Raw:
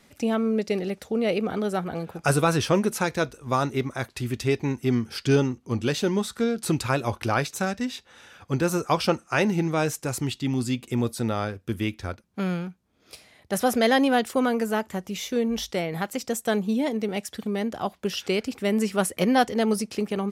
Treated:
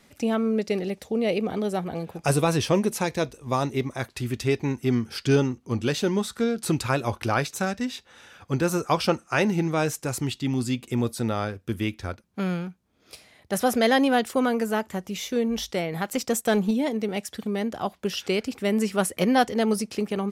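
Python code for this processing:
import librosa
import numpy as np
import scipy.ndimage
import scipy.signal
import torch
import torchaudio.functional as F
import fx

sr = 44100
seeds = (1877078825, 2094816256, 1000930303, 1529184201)

y = fx.peak_eq(x, sr, hz=1400.0, db=-8.5, octaves=0.35, at=(0.84, 4.0))
y = fx.leveller(y, sr, passes=1, at=(16.08, 16.71))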